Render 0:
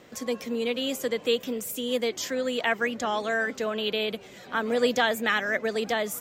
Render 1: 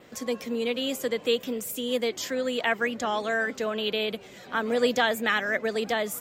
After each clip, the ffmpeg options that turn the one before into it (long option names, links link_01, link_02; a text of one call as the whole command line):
ffmpeg -i in.wav -af "adynamicequalizer=threshold=0.00158:dfrequency=6000:dqfactor=5.2:tfrequency=6000:tqfactor=5.2:attack=5:release=100:ratio=0.375:range=2:mode=cutabove:tftype=bell" out.wav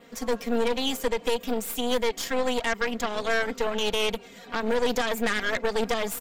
ffmpeg -i in.wav -af "aecho=1:1:4.3:0.93,alimiter=limit=-15dB:level=0:latency=1:release=109,aeval=exprs='0.178*(cos(1*acos(clip(val(0)/0.178,-1,1)))-cos(1*PI/2))+0.0501*(cos(4*acos(clip(val(0)/0.178,-1,1)))-cos(4*PI/2))':channel_layout=same,volume=-2.5dB" out.wav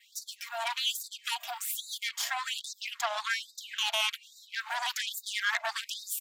ffmpeg -i in.wav -af "afftfilt=real='re*gte(b*sr/1024,600*pow(3700/600,0.5+0.5*sin(2*PI*1.2*pts/sr)))':imag='im*gte(b*sr/1024,600*pow(3700/600,0.5+0.5*sin(2*PI*1.2*pts/sr)))':win_size=1024:overlap=0.75" out.wav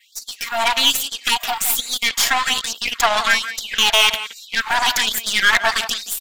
ffmpeg -i in.wav -filter_complex "[0:a]dynaudnorm=framelen=120:gausssize=5:maxgain=9dB,aeval=exprs='0.422*(cos(1*acos(clip(val(0)/0.422,-1,1)))-cos(1*PI/2))+0.0237*(cos(8*acos(clip(val(0)/0.422,-1,1)))-cos(8*PI/2))':channel_layout=same,asplit=2[link_01][link_02];[link_02]adelay=170,highpass=300,lowpass=3400,asoftclip=type=hard:threshold=-15.5dB,volume=-11dB[link_03];[link_01][link_03]amix=inputs=2:normalize=0,volume=6dB" out.wav